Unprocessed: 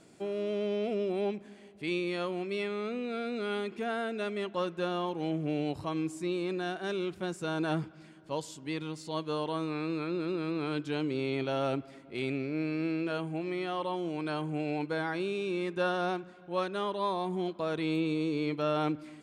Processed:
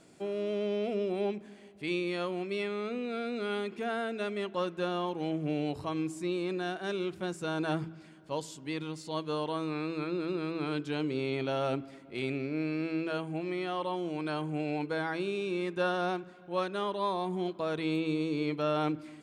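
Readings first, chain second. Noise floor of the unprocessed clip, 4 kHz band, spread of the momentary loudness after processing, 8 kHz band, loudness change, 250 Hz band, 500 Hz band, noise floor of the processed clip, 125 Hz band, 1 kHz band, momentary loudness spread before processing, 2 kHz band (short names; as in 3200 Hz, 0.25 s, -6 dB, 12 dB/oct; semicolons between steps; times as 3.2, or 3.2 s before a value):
-53 dBFS, 0.0 dB, 6 LU, 0.0 dB, 0.0 dB, -0.5 dB, 0.0 dB, -52 dBFS, -0.5 dB, 0.0 dB, 6 LU, 0.0 dB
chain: de-hum 54.56 Hz, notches 8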